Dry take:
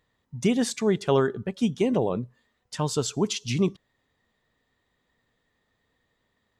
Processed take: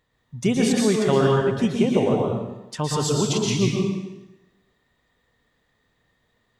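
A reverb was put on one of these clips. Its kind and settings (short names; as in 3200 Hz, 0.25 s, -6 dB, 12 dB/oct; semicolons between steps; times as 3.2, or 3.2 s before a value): plate-style reverb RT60 1 s, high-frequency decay 0.9×, pre-delay 0.105 s, DRR -2 dB; gain +1 dB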